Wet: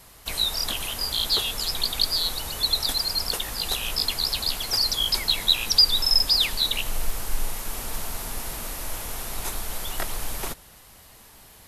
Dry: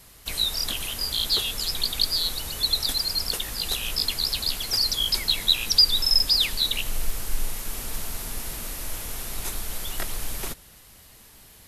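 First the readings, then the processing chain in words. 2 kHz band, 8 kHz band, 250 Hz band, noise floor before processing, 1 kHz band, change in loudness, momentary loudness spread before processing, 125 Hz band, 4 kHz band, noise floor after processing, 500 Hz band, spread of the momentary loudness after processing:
+1.0 dB, 0.0 dB, +0.5 dB, −51 dBFS, +4.5 dB, +0.5 dB, 14 LU, 0.0 dB, +0.5 dB, −50 dBFS, +3.0 dB, 14 LU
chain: parametric band 860 Hz +5.5 dB 1.5 octaves

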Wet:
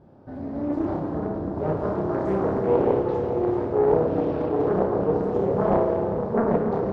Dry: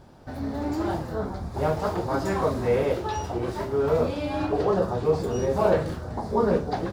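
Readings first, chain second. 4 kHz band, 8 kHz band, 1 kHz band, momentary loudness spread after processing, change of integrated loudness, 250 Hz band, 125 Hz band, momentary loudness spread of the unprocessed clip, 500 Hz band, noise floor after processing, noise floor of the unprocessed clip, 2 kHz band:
below −10 dB, below −20 dB, +0.5 dB, 7 LU, +2.0 dB, +4.0 dB, 0.0 dB, 8 LU, +2.5 dB, −36 dBFS, −37 dBFS, −4.5 dB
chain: resonant band-pass 260 Hz, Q 0.57
flutter between parallel walls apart 5.3 metres, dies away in 0.4 s
comb and all-pass reverb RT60 4.9 s, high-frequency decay 0.65×, pre-delay 30 ms, DRR 1 dB
highs frequency-modulated by the lows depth 0.62 ms

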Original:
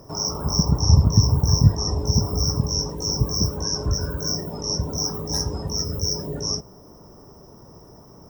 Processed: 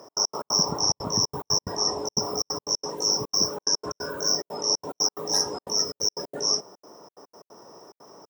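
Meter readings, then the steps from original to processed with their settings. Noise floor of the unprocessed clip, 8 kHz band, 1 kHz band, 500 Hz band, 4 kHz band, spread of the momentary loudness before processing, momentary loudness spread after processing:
−47 dBFS, +1.5 dB, +2.0 dB, −0.5 dB, +1.5 dB, 9 LU, 5 LU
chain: high-pass filter 440 Hz 12 dB per octave
high-shelf EQ 12,000 Hz −10.5 dB
gate pattern "x.x.x.xxxxx.xx" 180 BPM −60 dB
level +4 dB

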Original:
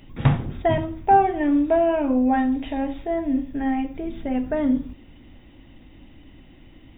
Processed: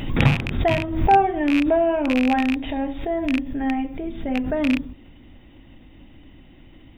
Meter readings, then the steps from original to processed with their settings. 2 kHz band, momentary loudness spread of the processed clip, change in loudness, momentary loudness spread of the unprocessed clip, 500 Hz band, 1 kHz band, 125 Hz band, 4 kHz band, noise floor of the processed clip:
+6.5 dB, 9 LU, +1.0 dB, 9 LU, +0.5 dB, 0.0 dB, +1.5 dB, can't be measured, −48 dBFS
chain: loose part that buzzes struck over −25 dBFS, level −13 dBFS
pitch vibrato 0.48 Hz 5.5 cents
background raised ahead of every attack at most 69 dB per second

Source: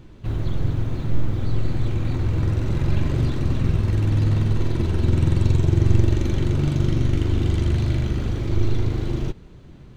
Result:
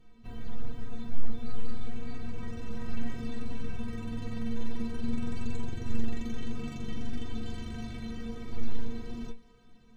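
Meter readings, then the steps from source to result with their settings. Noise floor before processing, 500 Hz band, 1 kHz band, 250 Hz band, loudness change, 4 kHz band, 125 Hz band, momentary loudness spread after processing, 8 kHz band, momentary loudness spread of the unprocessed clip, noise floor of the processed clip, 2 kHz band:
−43 dBFS, −14.5 dB, −10.5 dB, −10.0 dB, −17.0 dB, −10.5 dB, −21.5 dB, 7 LU, can't be measured, 7 LU, −55 dBFS, −10.0 dB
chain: stiff-string resonator 230 Hz, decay 0.24 s, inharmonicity 0.008
on a send: feedback echo with a high-pass in the loop 328 ms, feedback 81%, high-pass 420 Hz, level −22.5 dB
on the sum: level +1 dB

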